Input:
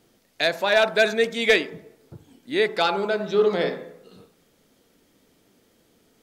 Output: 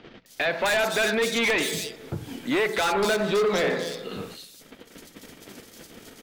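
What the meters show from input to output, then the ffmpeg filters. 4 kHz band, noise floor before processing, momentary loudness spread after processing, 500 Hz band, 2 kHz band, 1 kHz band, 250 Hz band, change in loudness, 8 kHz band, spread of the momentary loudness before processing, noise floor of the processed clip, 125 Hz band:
-1.5 dB, -63 dBFS, 14 LU, -3.0 dB, -1.0 dB, -1.0 dB, +1.5 dB, -2.5 dB, n/a, 9 LU, -52 dBFS, +3.0 dB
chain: -filter_complex "[0:a]agate=range=-34dB:threshold=-58dB:ratio=16:detection=peak,highshelf=f=7k:g=-5,bandreject=f=60:t=h:w=6,bandreject=f=120:t=h:w=6,bandreject=f=180:t=h:w=6,asplit=2[a][b];[b]acompressor=mode=upward:threshold=-21dB:ratio=2.5,volume=-1dB[c];[a][c]amix=inputs=2:normalize=0,alimiter=limit=-10dB:level=0:latency=1:release=158,acrossover=split=140|1500[d][e][f];[f]acontrast=77[g];[d][e][g]amix=inputs=3:normalize=0,asoftclip=type=hard:threshold=-19.5dB,acrossover=split=3600[h][i];[i]adelay=260[j];[h][j]amix=inputs=2:normalize=0"

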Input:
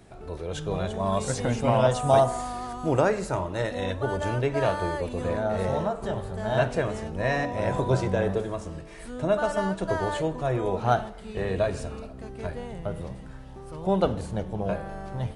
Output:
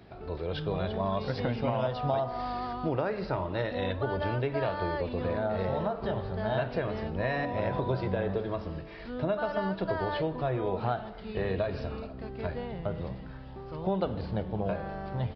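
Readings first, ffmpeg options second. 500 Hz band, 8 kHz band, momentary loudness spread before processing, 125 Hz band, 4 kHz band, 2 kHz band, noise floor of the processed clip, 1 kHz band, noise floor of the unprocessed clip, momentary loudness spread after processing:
-5.0 dB, under -30 dB, 13 LU, -4.0 dB, -4.0 dB, -4.5 dB, -43 dBFS, -5.0 dB, -42 dBFS, 7 LU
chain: -af "highpass=42,acompressor=threshold=-26dB:ratio=6,aresample=11025,aresample=44100"

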